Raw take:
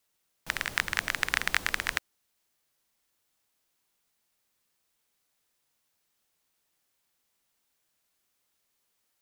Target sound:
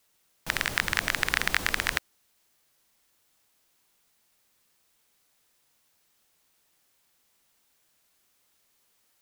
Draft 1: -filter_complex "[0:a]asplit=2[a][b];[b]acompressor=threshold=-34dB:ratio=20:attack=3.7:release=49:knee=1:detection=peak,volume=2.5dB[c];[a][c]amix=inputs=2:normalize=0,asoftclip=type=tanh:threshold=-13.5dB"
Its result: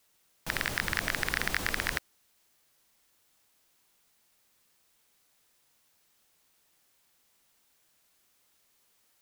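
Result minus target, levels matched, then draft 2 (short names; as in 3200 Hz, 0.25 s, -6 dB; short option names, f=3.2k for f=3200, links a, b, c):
soft clip: distortion +11 dB
-filter_complex "[0:a]asplit=2[a][b];[b]acompressor=threshold=-34dB:ratio=20:attack=3.7:release=49:knee=1:detection=peak,volume=2.5dB[c];[a][c]amix=inputs=2:normalize=0,asoftclip=type=tanh:threshold=-2.5dB"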